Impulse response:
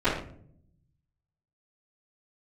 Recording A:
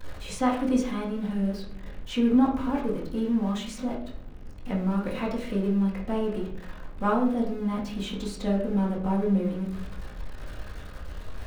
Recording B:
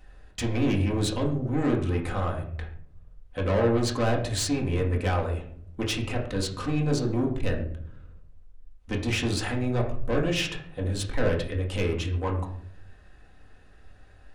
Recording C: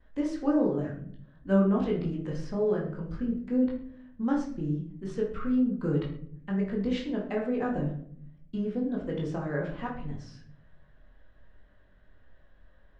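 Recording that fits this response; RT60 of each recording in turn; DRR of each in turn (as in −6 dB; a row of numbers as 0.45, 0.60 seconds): C; 0.60, 0.60, 0.60 seconds; −11.5, −2.0, −19.0 decibels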